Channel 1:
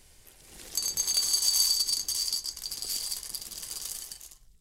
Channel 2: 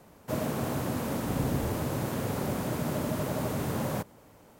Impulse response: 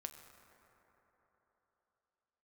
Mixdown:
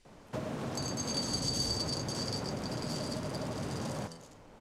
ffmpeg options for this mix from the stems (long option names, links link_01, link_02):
-filter_complex "[0:a]volume=-9.5dB,asplit=2[link_01][link_02];[link_02]volume=-7dB[link_03];[1:a]bandreject=frequency=82.97:width_type=h:width=4,bandreject=frequency=165.94:width_type=h:width=4,bandreject=frequency=248.91:width_type=h:width=4,bandreject=frequency=331.88:width_type=h:width=4,bandreject=frequency=414.85:width_type=h:width=4,bandreject=frequency=497.82:width_type=h:width=4,bandreject=frequency=580.79:width_type=h:width=4,bandreject=frequency=663.76:width_type=h:width=4,bandreject=frequency=746.73:width_type=h:width=4,bandreject=frequency=829.7:width_type=h:width=4,bandreject=frequency=912.67:width_type=h:width=4,bandreject=frequency=995.64:width_type=h:width=4,bandreject=frequency=1078.61:width_type=h:width=4,bandreject=frequency=1161.58:width_type=h:width=4,bandreject=frequency=1244.55:width_type=h:width=4,bandreject=frequency=1327.52:width_type=h:width=4,bandreject=frequency=1410.49:width_type=h:width=4,bandreject=frequency=1493.46:width_type=h:width=4,bandreject=frequency=1576.43:width_type=h:width=4,bandreject=frequency=1659.4:width_type=h:width=4,bandreject=frequency=1742.37:width_type=h:width=4,bandreject=frequency=1825.34:width_type=h:width=4,bandreject=frequency=1908.31:width_type=h:width=4,bandreject=frequency=1991.28:width_type=h:width=4,bandreject=frequency=2074.25:width_type=h:width=4,bandreject=frequency=2157.22:width_type=h:width=4,bandreject=frequency=2240.19:width_type=h:width=4,acompressor=threshold=-35dB:ratio=6,adelay=50,volume=1dB[link_04];[2:a]atrim=start_sample=2205[link_05];[link_03][link_05]afir=irnorm=-1:irlink=0[link_06];[link_01][link_04][link_06]amix=inputs=3:normalize=0,lowpass=6000"